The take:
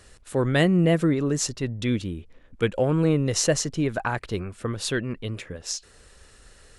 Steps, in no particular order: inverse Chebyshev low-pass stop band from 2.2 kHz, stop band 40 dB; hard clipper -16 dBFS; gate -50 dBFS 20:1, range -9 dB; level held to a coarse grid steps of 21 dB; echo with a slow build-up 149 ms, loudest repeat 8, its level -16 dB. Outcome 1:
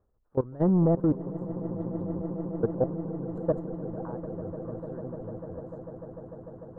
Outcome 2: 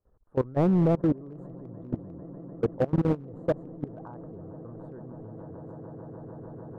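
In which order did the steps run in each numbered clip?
hard clipper > inverse Chebyshev low-pass > level held to a coarse grid > echo with a slow build-up > gate; inverse Chebyshev low-pass > gate > echo with a slow build-up > hard clipper > level held to a coarse grid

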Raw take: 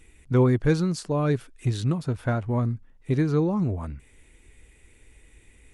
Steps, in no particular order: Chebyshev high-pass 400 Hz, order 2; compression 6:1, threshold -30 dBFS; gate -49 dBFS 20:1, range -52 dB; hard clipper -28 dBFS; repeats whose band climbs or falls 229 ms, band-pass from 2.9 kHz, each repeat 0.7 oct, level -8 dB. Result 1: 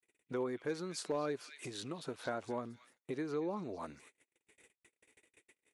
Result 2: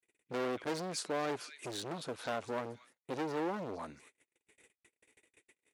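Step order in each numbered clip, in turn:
repeats whose band climbs or falls > gate > compression > Chebyshev high-pass > hard clipper; repeats whose band climbs or falls > hard clipper > gate > compression > Chebyshev high-pass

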